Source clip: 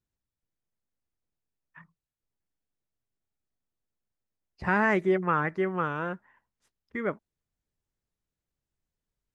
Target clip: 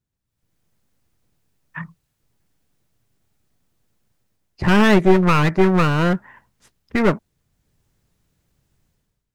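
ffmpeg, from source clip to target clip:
-af "dynaudnorm=f=120:g=7:m=16.5dB,equalizer=f=130:w=0.81:g=6.5,aeval=exprs='clip(val(0),-1,0.0841)':c=same,volume=2dB"

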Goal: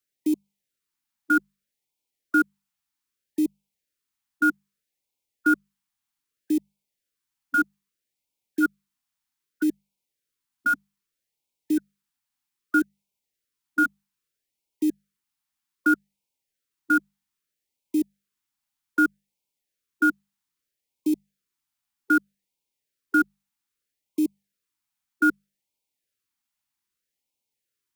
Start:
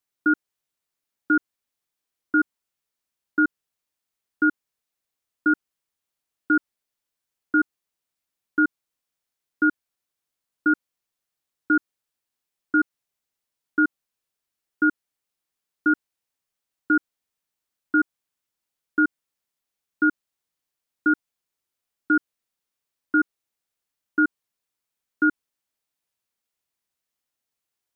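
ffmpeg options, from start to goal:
-filter_complex "[0:a]asuperstop=centerf=680:order=4:qfactor=5.5,acrossover=split=120|310|520[a][b][c][d];[d]acrusher=bits=4:mode=log:mix=0:aa=0.000001[e];[a][b][c][e]amix=inputs=4:normalize=0,bandreject=f=50:t=h:w=6,bandreject=f=100:t=h:w=6,bandreject=f=150:t=h:w=6,bandreject=f=200:t=h:w=6,afftfilt=real='re*(1-between(b*sr/1024,420*pow(1500/420,0.5+0.5*sin(2*PI*0.63*pts/sr))/1.41,420*pow(1500/420,0.5+0.5*sin(2*PI*0.63*pts/sr))*1.41))':imag='im*(1-between(b*sr/1024,420*pow(1500/420,0.5+0.5*sin(2*PI*0.63*pts/sr))/1.41,420*pow(1500/420,0.5+0.5*sin(2*PI*0.63*pts/sr))*1.41))':win_size=1024:overlap=0.75"

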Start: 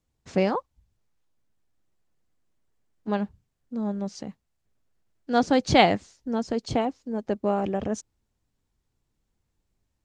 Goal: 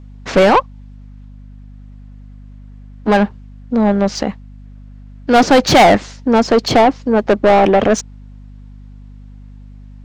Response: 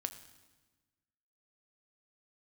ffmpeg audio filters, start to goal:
-filter_complex "[0:a]adynamicsmooth=sensitivity=7.5:basefreq=6.9k,asplit=2[a][b];[b]highpass=f=720:p=1,volume=29dB,asoftclip=type=tanh:threshold=-4.5dB[c];[a][c]amix=inputs=2:normalize=0,lowpass=f=2.7k:p=1,volume=-6dB,aeval=exprs='val(0)+0.0112*(sin(2*PI*50*n/s)+sin(2*PI*2*50*n/s)/2+sin(2*PI*3*50*n/s)/3+sin(2*PI*4*50*n/s)/4+sin(2*PI*5*50*n/s)/5)':c=same,volume=4dB"

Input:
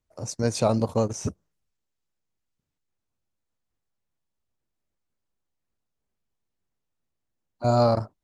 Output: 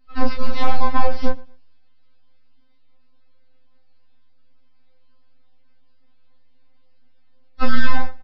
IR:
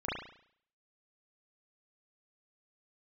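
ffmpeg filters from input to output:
-filter_complex "[0:a]adynamicequalizer=threshold=0.0251:dfrequency=660:dqfactor=1.1:tfrequency=660:tqfactor=1.1:attack=5:release=100:ratio=0.375:range=1.5:mode=boostabove:tftype=bell,acompressor=threshold=-35dB:ratio=3,aresample=11025,aeval=exprs='abs(val(0))':c=same,aresample=44100,aeval=exprs='0.075*(cos(1*acos(clip(val(0)/0.075,-1,1)))-cos(1*PI/2))+0.00211*(cos(3*acos(clip(val(0)/0.075,-1,1)))-cos(3*PI/2))+0.00075*(cos(6*acos(clip(val(0)/0.075,-1,1)))-cos(6*PI/2))':c=same,asplit=2[a][b];[b]adelay=29,volume=-2.5dB[c];[a][c]amix=inputs=2:normalize=0,asplit=2[d][e];[e]aecho=0:1:117|234:0.0668|0.0174[f];[d][f]amix=inputs=2:normalize=0,alimiter=level_in=25.5dB:limit=-1dB:release=50:level=0:latency=1,afftfilt=real='re*3.46*eq(mod(b,12),0)':imag='im*3.46*eq(mod(b,12),0)':win_size=2048:overlap=0.75,volume=-4.5dB"

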